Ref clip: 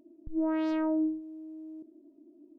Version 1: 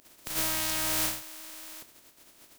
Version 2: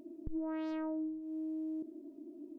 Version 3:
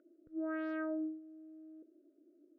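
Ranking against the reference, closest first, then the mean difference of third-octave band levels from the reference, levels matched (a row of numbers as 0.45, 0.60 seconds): 3, 2, 1; 1.5, 2.5, 19.0 decibels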